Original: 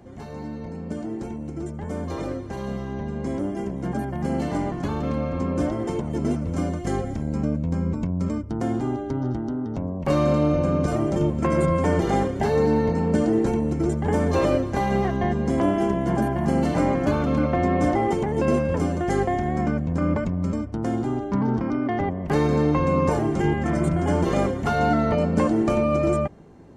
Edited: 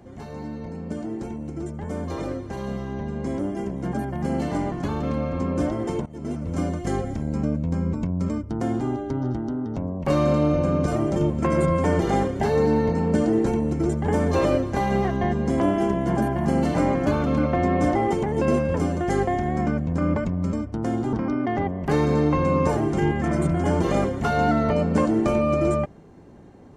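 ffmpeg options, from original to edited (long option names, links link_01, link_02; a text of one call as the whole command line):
ffmpeg -i in.wav -filter_complex "[0:a]asplit=3[link_01][link_02][link_03];[link_01]atrim=end=6.06,asetpts=PTS-STARTPTS,afade=type=out:start_time=6.056:duration=0.004:curve=hsin:silence=0.11885[link_04];[link_02]atrim=start=6.06:end=21.132,asetpts=PTS-STARTPTS,afade=type=in:duration=0.53:silence=0.11885[link_05];[link_03]atrim=start=21.548[link_06];[link_04][link_05]concat=n=2:v=0:a=1[link_07];[link_07][link_06]acrossfade=duration=0.004:curve1=hsin:curve2=hsin" out.wav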